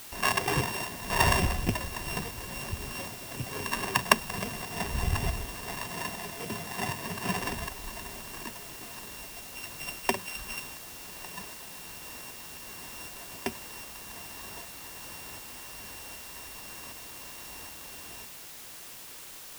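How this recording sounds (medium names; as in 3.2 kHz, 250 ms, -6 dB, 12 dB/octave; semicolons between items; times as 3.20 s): a buzz of ramps at a fixed pitch in blocks of 16 samples; tremolo saw up 1.3 Hz, depth 45%; a quantiser's noise floor 8-bit, dither triangular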